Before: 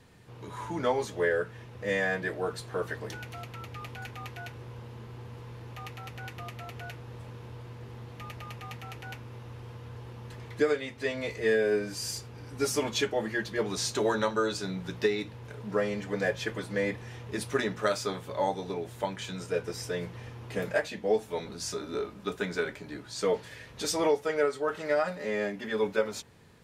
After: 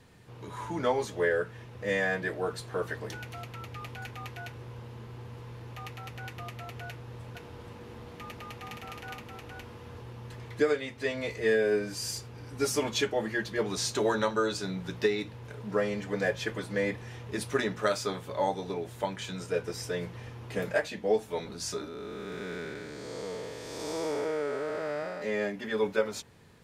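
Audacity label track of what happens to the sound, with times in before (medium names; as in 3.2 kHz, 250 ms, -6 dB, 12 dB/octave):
6.880000	10.020000	delay 471 ms -3.5 dB
21.880000	25.220000	spectral blur width 440 ms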